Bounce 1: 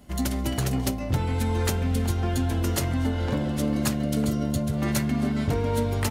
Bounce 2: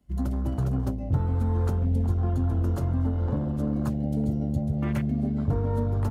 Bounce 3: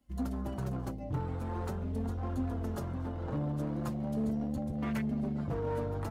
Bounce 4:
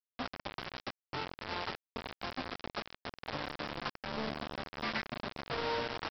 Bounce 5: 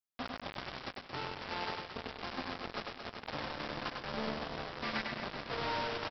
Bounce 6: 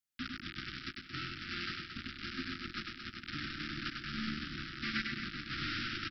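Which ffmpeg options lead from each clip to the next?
-filter_complex "[0:a]afwtdn=0.0251,acrossover=split=180|3900[a][b][c];[a]acontrast=63[d];[d][b][c]amix=inputs=3:normalize=0,volume=-4.5dB"
-af "lowshelf=f=280:g=-7,asoftclip=type=hard:threshold=-27dB,flanger=delay=3.6:depth=3.2:regen=32:speed=0.43:shape=triangular,volume=2dB"
-af "bandpass=f=2.3k:t=q:w=0.54:csg=0,aresample=11025,acrusher=bits=6:mix=0:aa=0.000001,aresample=44100,volume=7dB"
-af "aecho=1:1:100|225|381.2|576.6|820.7:0.631|0.398|0.251|0.158|0.1,volume=-2dB"
-af "asuperstop=centerf=670:order=20:qfactor=0.74,volume=2dB"

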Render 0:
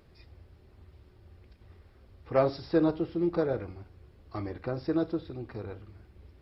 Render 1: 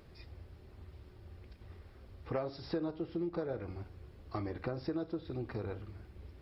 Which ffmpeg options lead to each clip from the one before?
-af "acompressor=threshold=-36dB:ratio=6,volume=2dB"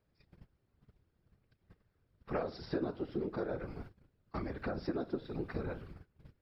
-af "agate=range=-21dB:threshold=-47dB:ratio=16:detection=peak,afftfilt=real='hypot(re,im)*cos(2*PI*random(0))':imag='hypot(re,im)*sin(2*PI*random(1))':win_size=512:overlap=0.75,equalizer=f=1.5k:t=o:w=0.49:g=4.5,volume=6dB"

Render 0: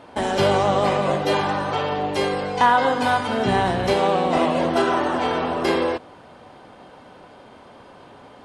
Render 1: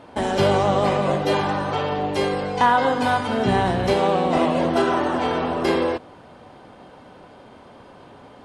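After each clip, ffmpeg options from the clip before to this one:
-af "lowshelf=f=410:g=4,volume=-1.5dB"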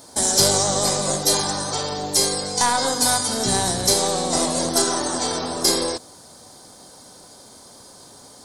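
-af "aeval=exprs='0.531*(cos(1*acos(clip(val(0)/0.531,-1,1)))-cos(1*PI/2))+0.119*(cos(2*acos(clip(val(0)/0.531,-1,1)))-cos(2*PI/2))':c=same,aexciter=amount=13.9:drive=8.7:freq=4.4k,volume=-4dB"

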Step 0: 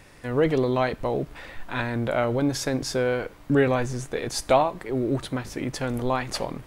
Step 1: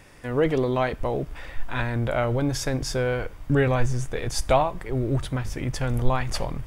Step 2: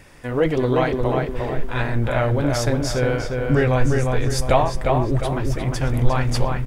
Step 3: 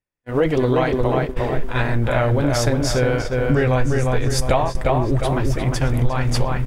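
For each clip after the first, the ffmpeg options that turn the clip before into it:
-af "bandreject=f=4.1k:w=11,asubboost=boost=5.5:cutoff=110"
-filter_complex "[0:a]flanger=delay=0.4:depth=7.8:regen=-46:speed=2:shape=sinusoidal,asplit=2[a][b];[b]adelay=354,lowpass=f=3.2k:p=1,volume=-3.5dB,asplit=2[c][d];[d]adelay=354,lowpass=f=3.2k:p=1,volume=0.44,asplit=2[e][f];[f]adelay=354,lowpass=f=3.2k:p=1,volume=0.44,asplit=2[g][h];[h]adelay=354,lowpass=f=3.2k:p=1,volume=0.44,asplit=2[i][j];[j]adelay=354,lowpass=f=3.2k:p=1,volume=0.44,asplit=2[k][l];[l]adelay=354,lowpass=f=3.2k:p=1,volume=0.44[m];[a][c][e][g][i][k][m]amix=inputs=7:normalize=0,volume=6.5dB"
-af "acompressor=threshold=-19dB:ratio=3,agate=range=-47dB:threshold=-25dB:ratio=16:detection=peak,volume=4.5dB"

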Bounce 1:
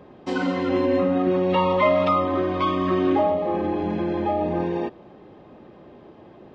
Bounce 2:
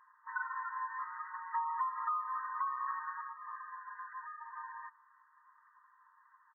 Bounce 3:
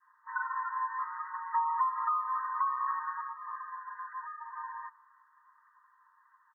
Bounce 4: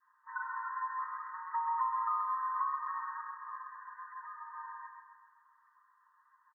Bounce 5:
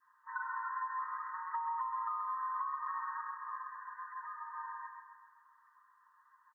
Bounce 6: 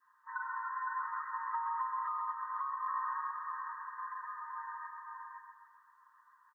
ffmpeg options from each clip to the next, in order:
-af "afftfilt=real='re*between(b*sr/4096,910,2000)':imag='im*between(b*sr/4096,910,2000)':win_size=4096:overlap=0.75,aecho=1:1:6.7:0.37,acompressor=threshold=-27dB:ratio=6,volume=-5.5dB"
-af "adynamicequalizer=threshold=0.00355:dfrequency=980:dqfactor=1.3:tfrequency=980:tqfactor=1.3:attack=5:release=100:ratio=0.375:range=3:mode=boostabove:tftype=bell"
-af "aecho=1:1:132|264|396|528|660|792|924:0.531|0.281|0.149|0.079|0.0419|0.0222|0.0118,volume=-5dB"
-af "acompressor=threshold=-36dB:ratio=6,volume=1.5dB"
-af "aecho=1:1:512:0.668"

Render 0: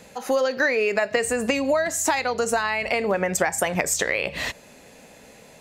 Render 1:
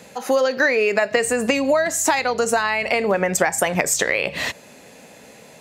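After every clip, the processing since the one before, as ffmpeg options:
-af "highpass=93,volume=3.5dB"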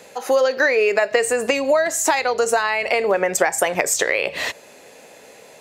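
-af "lowshelf=f=290:t=q:w=1.5:g=-7"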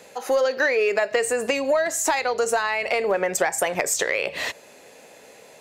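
-af "asoftclip=type=tanh:threshold=-6.5dB,volume=-3dB"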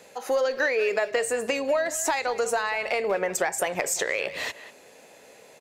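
-filter_complex "[0:a]asplit=2[a][b];[b]adelay=190,highpass=300,lowpass=3.4k,asoftclip=type=hard:threshold=-20dB,volume=-13dB[c];[a][c]amix=inputs=2:normalize=0,volume=-3.5dB"

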